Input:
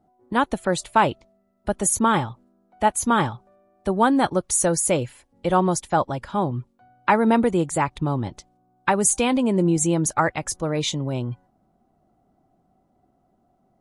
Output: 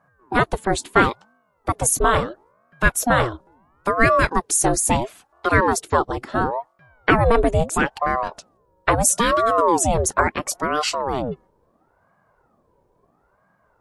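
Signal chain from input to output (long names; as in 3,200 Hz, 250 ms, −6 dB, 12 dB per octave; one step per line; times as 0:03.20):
ring modulator whose carrier an LFO sweeps 550 Hz, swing 65%, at 0.74 Hz
level +5 dB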